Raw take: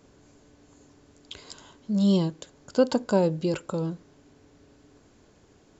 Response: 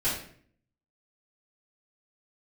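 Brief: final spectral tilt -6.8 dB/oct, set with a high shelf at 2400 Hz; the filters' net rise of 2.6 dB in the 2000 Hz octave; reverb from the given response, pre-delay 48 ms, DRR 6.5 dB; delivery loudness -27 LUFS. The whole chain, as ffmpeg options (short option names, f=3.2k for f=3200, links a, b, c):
-filter_complex "[0:a]equalizer=f=2k:t=o:g=7.5,highshelf=f=2.4k:g=-7,asplit=2[a][b];[1:a]atrim=start_sample=2205,adelay=48[c];[b][c]afir=irnorm=-1:irlink=0,volume=-16dB[d];[a][d]amix=inputs=2:normalize=0,volume=-2dB"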